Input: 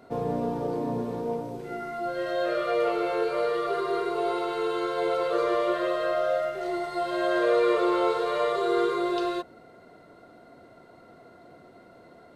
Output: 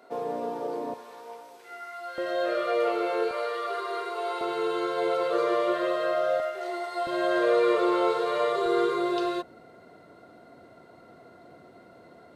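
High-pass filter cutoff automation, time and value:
400 Hz
from 0:00.94 1,100 Hz
from 0:02.18 260 Hz
from 0:03.31 630 Hz
from 0:04.41 150 Hz
from 0:06.40 480 Hz
from 0:07.07 130 Hz
from 0:08.66 56 Hz

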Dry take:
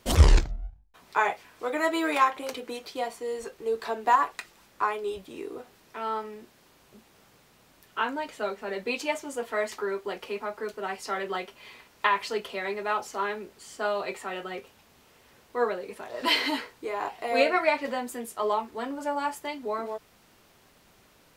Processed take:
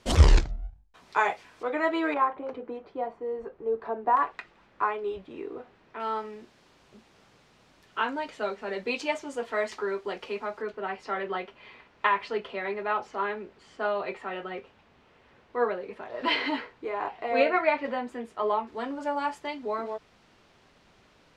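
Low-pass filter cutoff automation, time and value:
7,500 Hz
from 0:01.63 2,800 Hz
from 0:02.14 1,100 Hz
from 0:04.17 2,500 Hz
from 0:06.00 5,900 Hz
from 0:10.62 2,800 Hz
from 0:18.67 4,900 Hz

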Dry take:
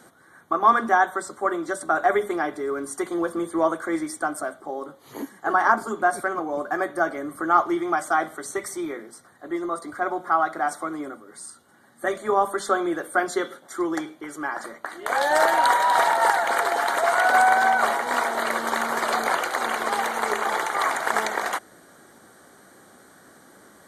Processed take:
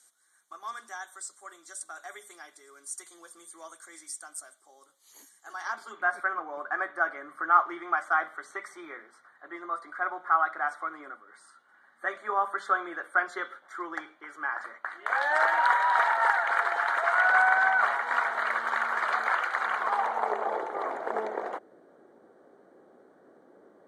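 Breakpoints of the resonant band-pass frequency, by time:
resonant band-pass, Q 1.6
0:05.48 7,400 Hz
0:06.14 1,500 Hz
0:19.63 1,500 Hz
0:20.67 450 Hz

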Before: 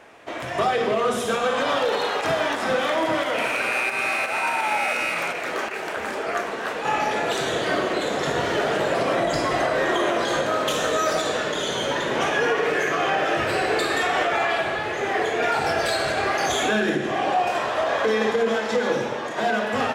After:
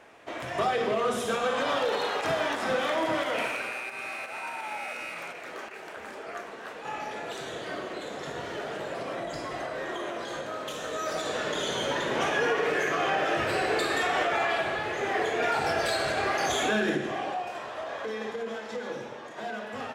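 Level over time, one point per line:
0:03.40 −5 dB
0:03.80 −12.5 dB
0:10.81 −12.5 dB
0:11.52 −4.5 dB
0:16.95 −4.5 dB
0:17.48 −13 dB

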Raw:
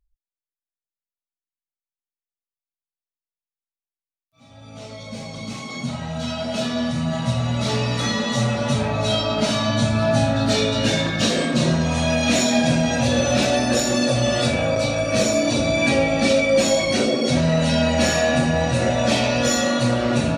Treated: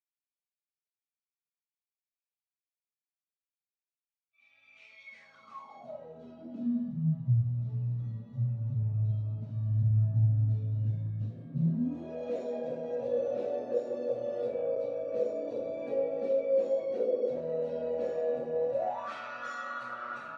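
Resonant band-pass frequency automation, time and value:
resonant band-pass, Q 11
0:05.05 2,400 Hz
0:06.13 450 Hz
0:07.41 110 Hz
0:11.43 110 Hz
0:12.20 480 Hz
0:18.68 480 Hz
0:19.12 1,300 Hz

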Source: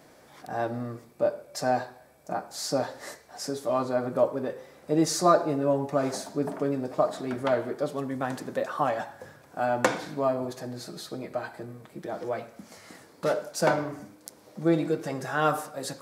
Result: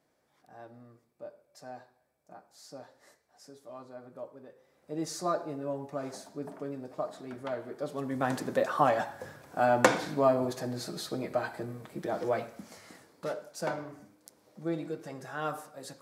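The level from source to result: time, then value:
0:04.54 −19.5 dB
0:05.06 −10.5 dB
0:07.62 −10.5 dB
0:08.30 +1.5 dB
0:12.45 +1.5 dB
0:13.37 −10 dB

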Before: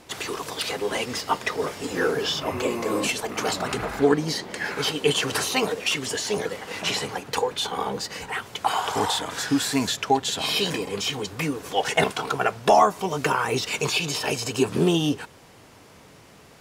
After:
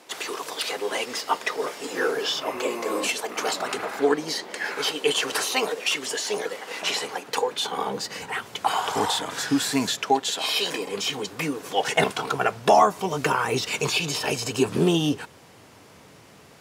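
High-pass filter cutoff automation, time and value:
0:07.09 340 Hz
0:08.18 120 Hz
0:09.79 120 Hz
0:10.56 500 Hz
0:11.02 180 Hz
0:11.55 180 Hz
0:12.37 71 Hz

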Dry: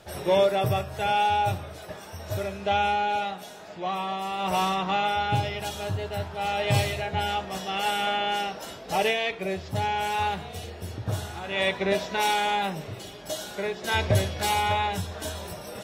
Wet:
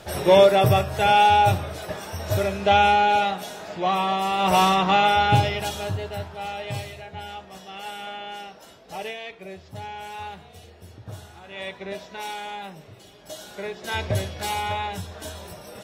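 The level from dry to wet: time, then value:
0:05.35 +7 dB
0:06.38 −2.5 dB
0:06.81 −9 dB
0:12.97 −9 dB
0:13.65 −2.5 dB

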